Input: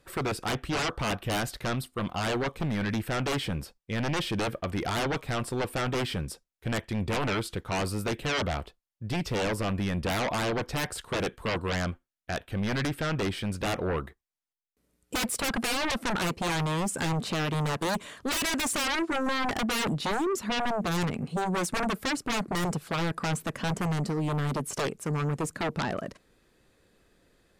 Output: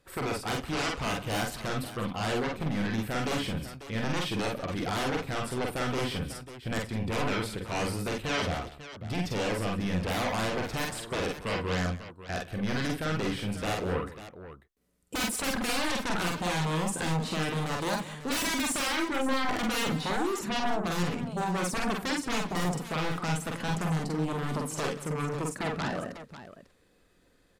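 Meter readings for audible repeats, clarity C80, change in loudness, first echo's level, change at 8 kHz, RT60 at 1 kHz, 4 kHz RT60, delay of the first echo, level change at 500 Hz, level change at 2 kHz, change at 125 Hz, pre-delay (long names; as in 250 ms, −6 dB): 4, no reverb audible, −1.0 dB, −2.0 dB, −1.0 dB, no reverb audible, no reverb audible, 45 ms, −1.0 dB, −1.0 dB, −2.0 dB, no reverb audible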